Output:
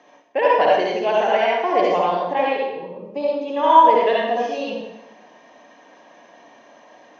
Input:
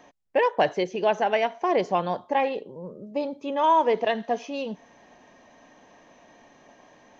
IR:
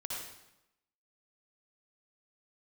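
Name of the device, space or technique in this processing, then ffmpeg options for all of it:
supermarket ceiling speaker: -filter_complex "[0:a]highpass=250,lowpass=5.8k[a];[1:a]atrim=start_sample=2205[b];[a][b]afir=irnorm=-1:irlink=0,volume=5dB"

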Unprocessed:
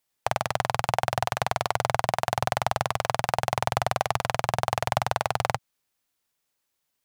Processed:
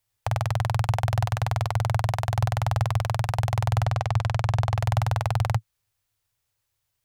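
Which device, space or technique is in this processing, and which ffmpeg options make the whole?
car stereo with a boomy subwoofer: -filter_complex "[0:a]lowshelf=f=150:t=q:w=3:g=11,alimiter=limit=-10.5dB:level=0:latency=1:release=92,asettb=1/sr,asplit=3[a][b][c];[a]atrim=end=3.854[d];[b]atrim=start=3.85:end=4.78,asetpts=PTS-STARTPTS,afade=t=in:d=0.004:c=qsin,afade=t=out:st=0.926:d=0.004:c=qsin,acrossover=split=8100[e][f];[f]acompressor=threshold=-53dB:ratio=4:attack=1:release=60[g];[e][g]amix=inputs=2:normalize=0[h];[c]atrim=start=4.776[i];[d][h]acrossfade=d=0.004:c1=hsin:c2=qsin[j];[j][i]acrossfade=d=0.004:c1=qsin:c2=hsin"

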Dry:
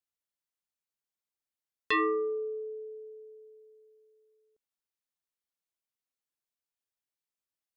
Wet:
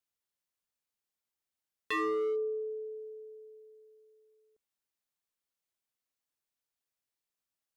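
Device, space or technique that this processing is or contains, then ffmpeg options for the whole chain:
limiter into clipper: -af "alimiter=level_in=4.5dB:limit=-24dB:level=0:latency=1,volume=-4.5dB,asoftclip=type=hard:threshold=-30dB,volume=1.5dB"

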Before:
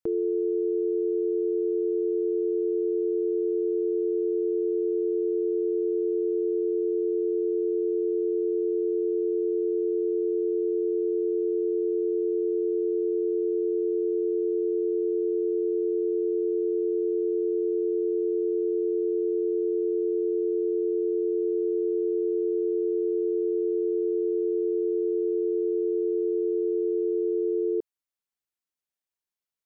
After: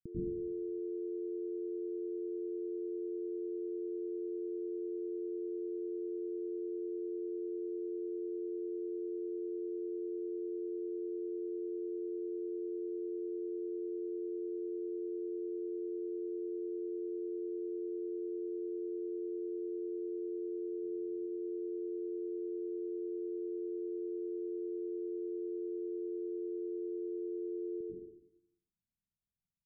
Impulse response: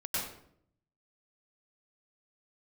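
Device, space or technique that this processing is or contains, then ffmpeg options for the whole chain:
club heard from the street: -filter_complex "[0:a]asplit=3[a][b][c];[a]afade=t=out:st=20.71:d=0.02[d];[b]asplit=2[e][f];[f]adelay=14,volume=-8dB[g];[e][g]amix=inputs=2:normalize=0,afade=t=in:st=20.71:d=0.02,afade=t=out:st=21.14:d=0.02[h];[c]afade=t=in:st=21.14:d=0.02[i];[d][h][i]amix=inputs=3:normalize=0,alimiter=limit=-23dB:level=0:latency=1:release=221,lowpass=f=210:w=0.5412,lowpass=f=210:w=1.3066[j];[1:a]atrim=start_sample=2205[k];[j][k]afir=irnorm=-1:irlink=0,volume=6.5dB"

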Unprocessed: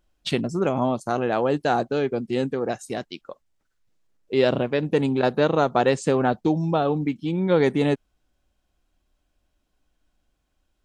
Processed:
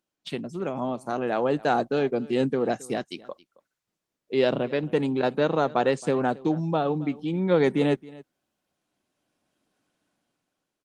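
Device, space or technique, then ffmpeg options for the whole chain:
video call: -filter_complex "[0:a]asplit=3[a][b][c];[a]afade=t=out:st=2.39:d=0.02[d];[b]lowshelf=f=210:g=4.5,afade=t=in:st=2.39:d=0.02,afade=t=out:st=2.96:d=0.02[e];[c]afade=t=in:st=2.96:d=0.02[f];[d][e][f]amix=inputs=3:normalize=0,highpass=f=130:w=0.5412,highpass=f=130:w=1.3066,aecho=1:1:271:0.0891,dynaudnorm=f=360:g=7:m=15dB,volume=-8dB" -ar 48000 -c:a libopus -b:a 24k

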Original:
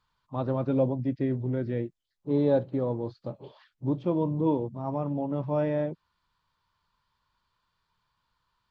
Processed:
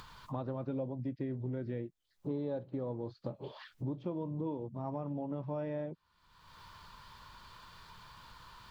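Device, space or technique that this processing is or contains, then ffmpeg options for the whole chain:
upward and downward compression: -af "acompressor=mode=upward:threshold=-40dB:ratio=2.5,acompressor=threshold=-39dB:ratio=5,volume=3dB"

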